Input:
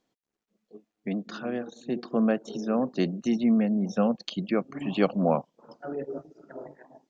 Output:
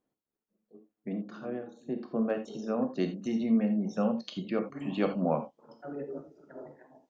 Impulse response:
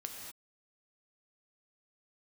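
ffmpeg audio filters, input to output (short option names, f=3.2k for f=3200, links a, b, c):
-filter_complex "[0:a]asetnsamples=n=441:p=0,asendcmd='2.3 equalizer g -2.5',equalizer=f=4.6k:w=0.48:g=-12[a];[1:a]atrim=start_sample=2205,afade=t=out:st=0.14:d=0.01,atrim=end_sample=6615[b];[a][b]afir=irnorm=-1:irlink=0,volume=-1dB"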